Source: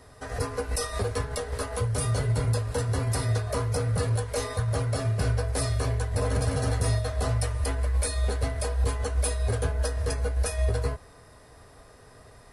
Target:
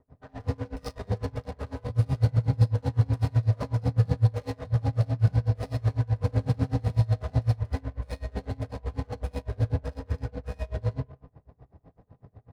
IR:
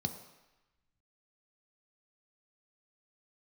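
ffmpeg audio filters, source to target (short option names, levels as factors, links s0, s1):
-filter_complex "[0:a]aecho=1:1:37|53:0.473|0.473,asplit=2[s0][s1];[1:a]atrim=start_sample=2205,adelay=77[s2];[s1][s2]afir=irnorm=-1:irlink=0,volume=1.06[s3];[s0][s3]amix=inputs=2:normalize=0,adynamicsmooth=sensitivity=4:basefreq=630,aeval=exprs='val(0)*pow(10,-28*(0.5-0.5*cos(2*PI*8*n/s))/20)':c=same,volume=0.473"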